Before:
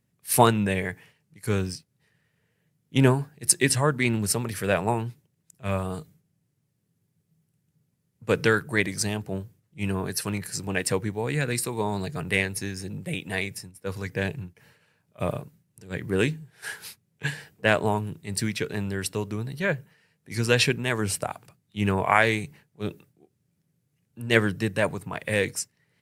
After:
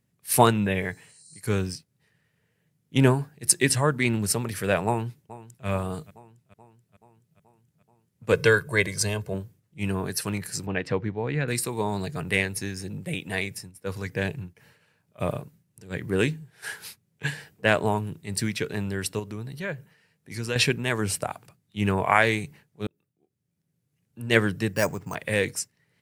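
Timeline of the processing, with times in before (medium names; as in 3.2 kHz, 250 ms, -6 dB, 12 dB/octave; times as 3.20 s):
0.64–1.38 s: spectral replace 3.9–9.4 kHz
4.86–5.67 s: echo throw 430 ms, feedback 65%, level -17.5 dB
8.32–9.34 s: comb 1.9 ms
10.66–11.48 s: distance through air 230 m
19.19–20.56 s: compression 1.5:1, threshold -38 dBFS
22.87–24.23 s: fade in
24.73–25.15 s: careless resampling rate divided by 6×, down filtered, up hold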